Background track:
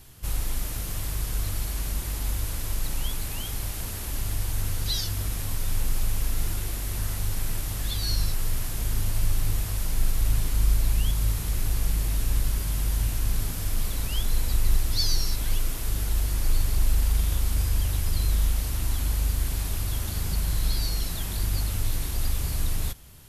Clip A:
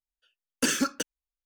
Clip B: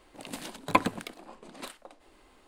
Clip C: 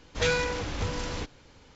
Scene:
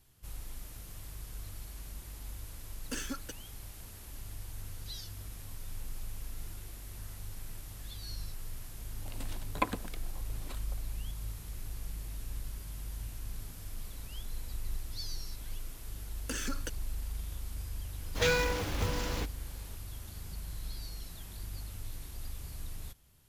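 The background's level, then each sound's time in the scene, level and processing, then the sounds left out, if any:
background track −15.5 dB
0:02.29: mix in A −13.5 dB
0:08.87: mix in B −8 dB
0:15.67: mix in A −2.5 dB + downward compressor, threshold −32 dBFS
0:18.00: mix in C −2 dB + floating-point word with a short mantissa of 2 bits

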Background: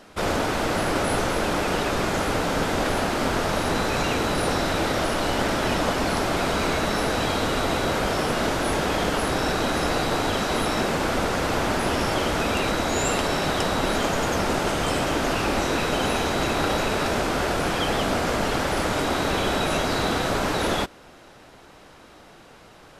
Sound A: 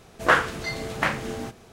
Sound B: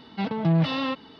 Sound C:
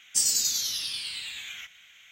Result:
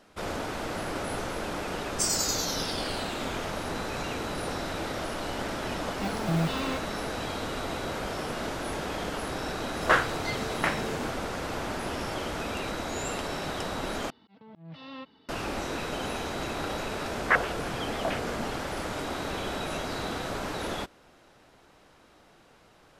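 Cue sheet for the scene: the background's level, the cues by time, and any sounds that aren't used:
background −9.5 dB
0:01.84: mix in C −5.5 dB + parametric band 5,000 Hz +3 dB
0:05.83: mix in B −6.5 dB + one scale factor per block 5 bits
0:09.61: mix in A −4 dB
0:14.10: overwrite with B −12.5 dB + volume swells 515 ms
0:17.02: mix in A −9.5 dB + low-pass on a step sequencer 12 Hz 210–3,100 Hz

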